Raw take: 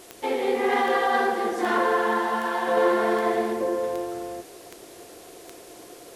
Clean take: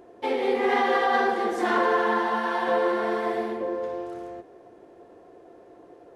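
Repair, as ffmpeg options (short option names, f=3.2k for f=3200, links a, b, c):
-af "adeclick=t=4,afwtdn=0.004,asetnsamples=n=441:p=0,asendcmd='2.77 volume volume -3.5dB',volume=0dB"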